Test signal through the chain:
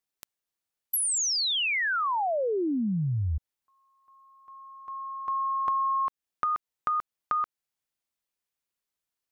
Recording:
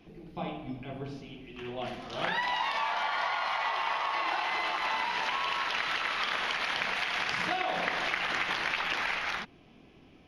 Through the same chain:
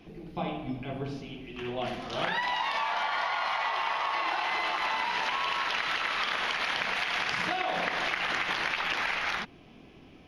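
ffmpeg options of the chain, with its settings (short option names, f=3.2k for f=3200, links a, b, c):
-af "acompressor=threshold=-30dB:ratio=6,volume=4dB"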